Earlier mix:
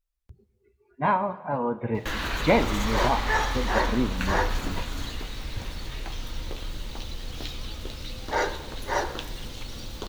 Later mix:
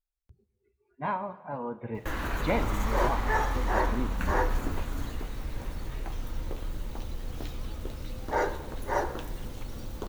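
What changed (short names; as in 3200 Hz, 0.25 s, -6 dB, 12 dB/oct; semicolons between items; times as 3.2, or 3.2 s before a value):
speech -8.0 dB; background: add bell 3900 Hz -13 dB 1.8 oct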